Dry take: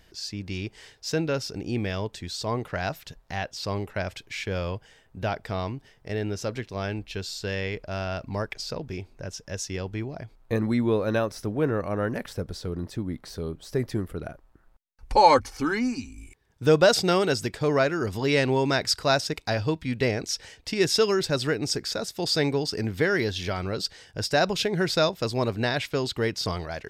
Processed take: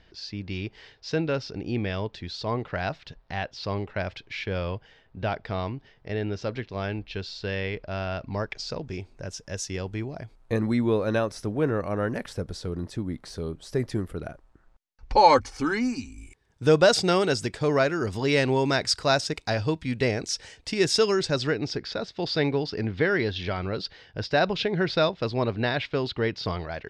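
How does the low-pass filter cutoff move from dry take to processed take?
low-pass filter 24 dB per octave
0:08.16 4,700 Hz
0:09.33 11,000 Hz
0:14.25 11,000 Hz
0:15.13 5,600 Hz
0:15.57 9,900 Hz
0:21.08 9,900 Hz
0:21.74 4,300 Hz

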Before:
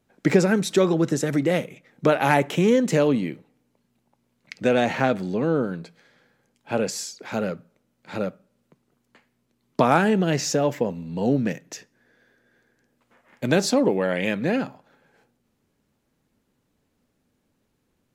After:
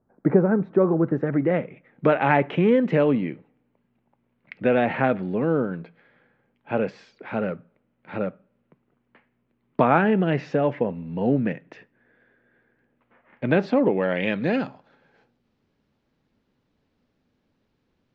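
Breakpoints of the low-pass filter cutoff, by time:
low-pass filter 24 dB per octave
0:00.77 1,300 Hz
0:02.05 2,700 Hz
0:13.77 2,700 Hz
0:14.61 5,000 Hz

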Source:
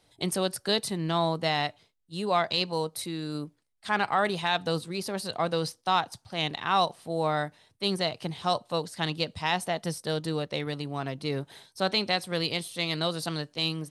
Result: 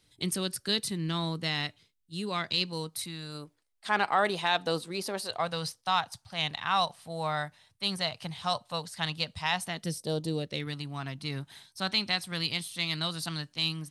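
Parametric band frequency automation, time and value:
parametric band −14 dB 1.3 octaves
0:02.79 700 Hz
0:03.94 94 Hz
0:05.07 94 Hz
0:05.52 360 Hz
0:09.57 360 Hz
0:10.15 2,000 Hz
0:10.79 480 Hz

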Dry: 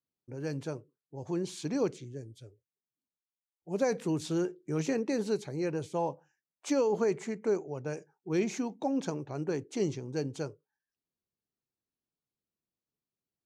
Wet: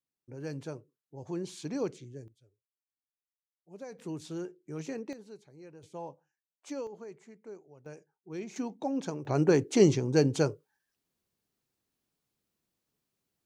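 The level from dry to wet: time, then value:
−3 dB
from 0:02.28 −15.5 dB
from 0:03.99 −7.5 dB
from 0:05.13 −18 dB
from 0:05.83 −10 dB
from 0:06.87 −17 dB
from 0:07.86 −10 dB
from 0:08.56 −1.5 dB
from 0:09.25 +9.5 dB

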